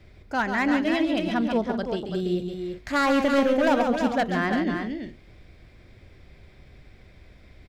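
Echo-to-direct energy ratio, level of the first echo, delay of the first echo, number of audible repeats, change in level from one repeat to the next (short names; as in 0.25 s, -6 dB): -3.5 dB, -7.0 dB, 0.138 s, 3, no steady repeat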